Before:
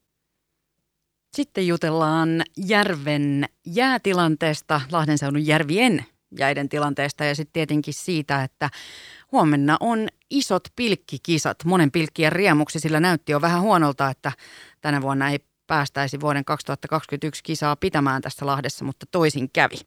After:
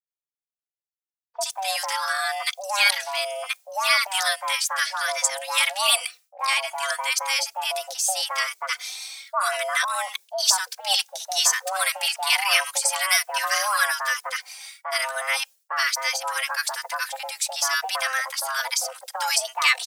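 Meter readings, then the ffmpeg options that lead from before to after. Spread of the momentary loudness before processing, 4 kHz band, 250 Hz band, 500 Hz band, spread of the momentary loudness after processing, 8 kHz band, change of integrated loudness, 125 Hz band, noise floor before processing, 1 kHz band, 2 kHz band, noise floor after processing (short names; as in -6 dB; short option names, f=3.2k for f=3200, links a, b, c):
9 LU, +6.5 dB, under -40 dB, -10.0 dB, 9 LU, +11.5 dB, -1.0 dB, under -40 dB, -77 dBFS, -2.5 dB, +1.0 dB, under -85 dBFS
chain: -filter_complex "[0:a]agate=range=-33dB:threshold=-44dB:ratio=3:detection=peak,bass=f=250:g=-12,treble=f=4k:g=11,acrossover=split=700[a][b];[a]acompressor=threshold=-31dB:ratio=6[c];[c][b]amix=inputs=2:normalize=0,afreqshift=390,acrossover=split=1300[d][e];[e]adelay=70[f];[d][f]amix=inputs=2:normalize=0,asplit=2[g][h];[h]adelay=3.3,afreqshift=1.1[i];[g][i]amix=inputs=2:normalize=1,volume=4dB"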